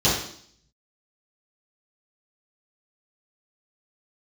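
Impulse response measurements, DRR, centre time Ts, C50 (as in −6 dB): −10.0 dB, 47 ms, 2.5 dB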